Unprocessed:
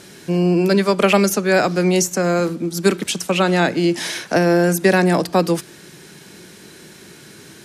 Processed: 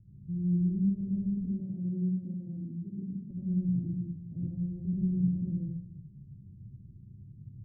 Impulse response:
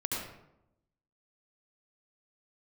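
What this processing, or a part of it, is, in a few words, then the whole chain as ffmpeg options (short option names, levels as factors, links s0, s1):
club heard from the street: -filter_complex "[0:a]alimiter=limit=0.355:level=0:latency=1,lowpass=f=120:w=0.5412,lowpass=f=120:w=1.3066[s0];[1:a]atrim=start_sample=2205[s1];[s0][s1]afir=irnorm=-1:irlink=0,asettb=1/sr,asplit=3[s2][s3][s4];[s2]atrim=end=1.604[s5];[s3]atrim=start=1.6:end=3.31,asetpts=PTS-STARTPTS,afade=t=in:d=0.004:c=qsin,afade=t=out:st=1.706:d=0.004:c=qsin,highpass=180[s6];[s4]atrim=start=3.306[s7];[s5][s6]acrossfade=d=0.004:c1=hsin:c2=qsin[s8];[s8][s7]acrossfade=d=0.004:c1=qsin:c2=hsin,volume=1.12"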